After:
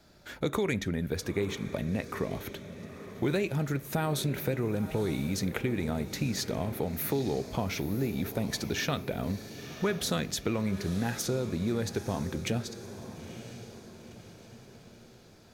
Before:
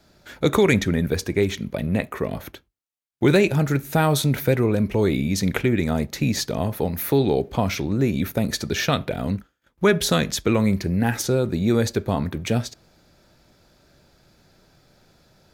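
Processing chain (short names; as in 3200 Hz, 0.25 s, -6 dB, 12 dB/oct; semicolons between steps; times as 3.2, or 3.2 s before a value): compressor 2.5:1, threshold -28 dBFS, peak gain reduction 10.5 dB; on a send: diffused feedback echo 0.944 s, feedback 49%, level -12 dB; on the sum: gain -2.5 dB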